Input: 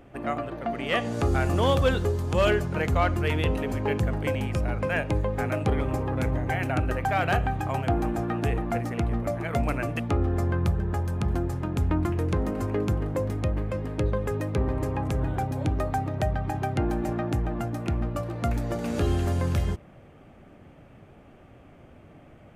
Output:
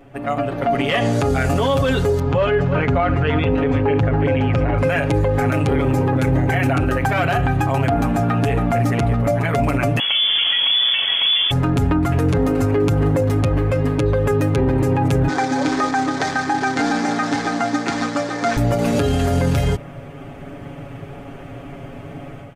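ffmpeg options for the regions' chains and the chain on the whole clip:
ffmpeg -i in.wav -filter_complex "[0:a]asettb=1/sr,asplit=3[link_01][link_02][link_03];[link_01]atrim=end=2.194[link_04];[link_02]atrim=start=2.19:end=4.78,asetpts=PTS-STARTPTS,afade=type=in:duration=0.004:curve=qsin,afade=type=out:start_time=2.586:duration=0.004:curve=qsin,lowpass=2600,aecho=1:1:332:0.158,atrim=end_sample=114219[link_05];[link_03]atrim=start=4.776[link_06];[link_04][link_05]acrossfade=duration=0.004:curve1=hsin:curve2=qsin[link_07];[link_07][link_06]acrossfade=duration=0.004:curve1=qsin:curve2=hsin,asettb=1/sr,asplit=3[link_08][link_09][link_10];[link_08]atrim=end=9.994[link_11];[link_09]atrim=start=9.99:end=11.51,asetpts=PTS-STARTPTS,afade=type=in:duration=0.004:curve=qsin,afade=type=out:start_time=1.516:duration=0.004:curve=qsin,acrusher=bits=7:dc=4:mix=0:aa=0.000001,lowpass=frequency=3000:width_type=q:width=0.5098,lowpass=frequency=3000:width_type=q:width=0.6013,lowpass=frequency=3000:width_type=q:width=0.9,lowpass=frequency=3000:width_type=q:width=2.563,afreqshift=-3500[link_12];[link_10]atrim=start=11.506[link_13];[link_11][link_12]acrossfade=duration=0.004:curve1=hsin:curve2=qsin[link_14];[link_14][link_13]acrossfade=duration=0.004:curve1=qsin:curve2=hsin,asettb=1/sr,asplit=3[link_15][link_16][link_17];[link_15]atrim=end=15.284[link_18];[link_16]atrim=start=15.28:end=18.57,asetpts=PTS-STARTPTS,afade=type=in:duration=0.004:curve=qsin,afade=type=out:start_time=3.286:duration=0.004:curve=qsin,acrusher=bits=4:mode=log:mix=0:aa=0.000001,highpass=340,equalizer=frequency=560:width_type=q:width=4:gain=-7,equalizer=frequency=1700:width_type=q:width=4:gain=5,equalizer=frequency=2800:width_type=q:width=4:gain=-9,lowpass=frequency=6800:width=0.5412,lowpass=frequency=6800:width=1.3066,aecho=1:1:3.9:0.38,atrim=end_sample=145089[link_19];[link_17]atrim=start=18.566[link_20];[link_18][link_19]acrossfade=duration=0.004:curve1=hsin:curve2=qsin[link_21];[link_21][link_20]acrossfade=duration=0.004:curve1=qsin:curve2=hsin,aecho=1:1:7.2:0.93,dynaudnorm=framelen=320:gausssize=3:maxgain=11.5dB,alimiter=limit=-12.5dB:level=0:latency=1:release=27,volume=2.5dB" out.wav

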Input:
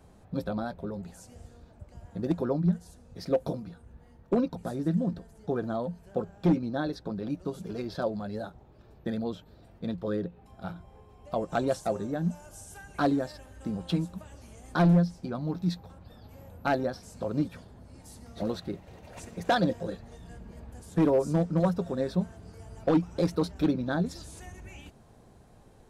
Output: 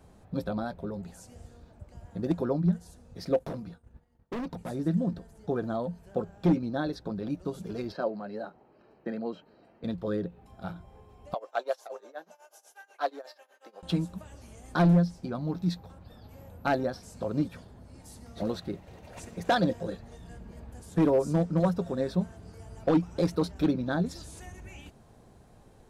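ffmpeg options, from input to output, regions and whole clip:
ffmpeg -i in.wav -filter_complex "[0:a]asettb=1/sr,asplit=3[link_01][link_02][link_03];[link_01]atrim=end=3.394[link_04];[link_02]atrim=start=3.39:end=4.7,asetpts=PTS-STARTPTS,afade=type=in:duration=0.004:curve=qsin,afade=type=out:start_time=1.306:duration=0.004:curve=qsin,agate=range=-33dB:threshold=-46dB:ratio=3:release=100:detection=peak,volume=32dB,asoftclip=hard,volume=-32dB[link_05];[link_03]atrim=start=4.696[link_06];[link_04][link_05]acrossfade=duration=0.004:curve1=hsin:curve2=qsin[link_07];[link_07][link_06]acrossfade=duration=0.004:curve1=qsin:curve2=hsin,asettb=1/sr,asplit=3[link_08][link_09][link_10];[link_08]atrim=end=7.924[link_11];[link_09]atrim=start=7.92:end=9.84,asetpts=PTS-STARTPTS,afade=type=in:duration=0.004:curve=qsin,afade=type=out:start_time=1.916:duration=0.004:curve=qsin,asuperstop=centerf=3500:order=8:qfactor=6.8,acrossover=split=190 4300:gain=0.0708 1 0.158[link_12][link_13][link_14];[link_12][link_13][link_14]amix=inputs=3:normalize=0[link_15];[link_10]atrim=start=9.836[link_16];[link_11][link_15]acrossfade=duration=0.004:curve1=hsin:curve2=qsin[link_17];[link_17][link_16]acrossfade=duration=0.004:curve1=qsin:curve2=hsin,asettb=1/sr,asplit=3[link_18][link_19][link_20];[link_18]atrim=end=11.344[link_21];[link_19]atrim=start=11.34:end=13.83,asetpts=PTS-STARTPTS,afade=type=in:duration=0.004:curve=qsin,afade=type=out:start_time=2.486:duration=0.004:curve=qsin,highpass=frequency=490:width=0.5412,highpass=frequency=490:width=1.3066,equalizer=frequency=8400:width_type=o:width=0.48:gain=-13,tremolo=f=8.2:d=0.91[link_22];[link_20]atrim=start=13.826[link_23];[link_21][link_22]acrossfade=duration=0.004:curve1=hsin:curve2=qsin[link_24];[link_24][link_23]acrossfade=duration=0.004:curve1=qsin:curve2=hsin" out.wav

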